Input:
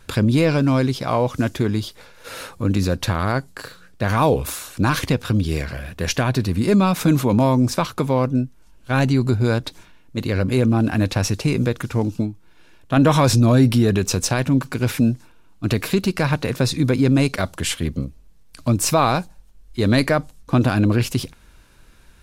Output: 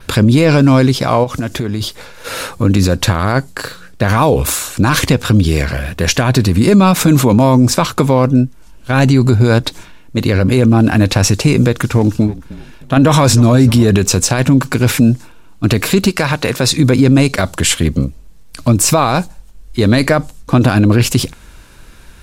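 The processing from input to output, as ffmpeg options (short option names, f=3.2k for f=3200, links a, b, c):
-filter_complex "[0:a]asplit=3[a][b][c];[a]afade=t=out:st=1.23:d=0.02[d];[b]acompressor=threshold=-26dB:ratio=6:attack=3.2:release=140:knee=1:detection=peak,afade=t=in:st=1.23:d=0.02,afade=t=out:st=1.8:d=0.02[e];[c]afade=t=in:st=1.8:d=0.02[f];[d][e][f]amix=inputs=3:normalize=0,asettb=1/sr,asplit=3[g][h][i];[g]atrim=end=11.644[j];[h]atrim=start=11.64:end=13.85,asetpts=PTS-STARTPTS,afade=t=in:d=0.004:c=qsin,afade=t=out:st=2.206:d=0.004:c=qsin,asplit=4[k][l][m][n];[l]adelay=308,afreqshift=-35,volume=-20dB[o];[m]adelay=616,afreqshift=-70,volume=-28.4dB[p];[n]adelay=924,afreqshift=-105,volume=-36.8dB[q];[k][o][p][q]amix=inputs=4:normalize=0,atrim=end_sample=97461[r];[i]atrim=start=13.846[s];[j][r]acrossfade=d=0.004:c1=hsin:c2=qsin[t];[t][s]acrossfade=d=0.004:c1=qsin:c2=hsin,asettb=1/sr,asplit=3[u][v][w];[u]atrim=end=16.094[x];[v]atrim=start=16.09:end=16.79,asetpts=PTS-STARTPTS,afade=t=in:d=0.004:c=qsin,afade=t=out:st=0.696:d=0.004:c=qsin,lowshelf=f=360:g=-7.5[y];[w]atrim=start=16.786[z];[x][y]acrossfade=d=0.004:c1=hsin:c2=qsin[aa];[aa][z]acrossfade=d=0.004:c1=qsin:c2=hsin,adynamicequalizer=threshold=0.00562:dfrequency=7500:dqfactor=3.6:tfrequency=7500:tqfactor=3.6:attack=5:release=100:ratio=0.375:range=2.5:mode=boostabove:tftype=bell,alimiter=level_in=12dB:limit=-1dB:release=50:level=0:latency=1,volume=-1dB"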